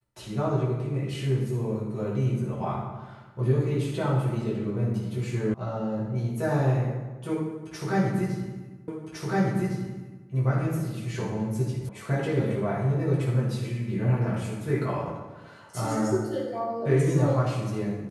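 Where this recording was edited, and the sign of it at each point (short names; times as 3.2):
5.54 sound cut off
8.88 repeat of the last 1.41 s
11.89 sound cut off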